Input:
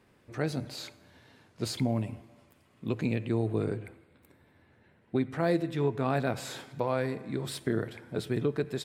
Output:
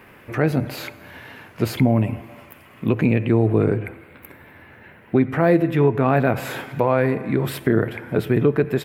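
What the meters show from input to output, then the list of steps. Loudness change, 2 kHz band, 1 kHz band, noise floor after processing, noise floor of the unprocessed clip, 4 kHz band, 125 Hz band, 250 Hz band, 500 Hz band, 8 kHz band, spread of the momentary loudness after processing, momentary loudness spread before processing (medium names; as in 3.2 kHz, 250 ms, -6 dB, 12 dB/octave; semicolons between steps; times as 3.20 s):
+11.5 dB, +12.0 dB, +11.0 dB, -48 dBFS, -64 dBFS, +3.5 dB, +12.0 dB, +12.0 dB, +11.5 dB, no reading, 16 LU, 12 LU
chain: high-order bell 5.8 kHz -13.5 dB; in parallel at -0.5 dB: peak limiter -23 dBFS, peak gain reduction 8 dB; on the sum: tape noise reduction on one side only encoder only; trim +7.5 dB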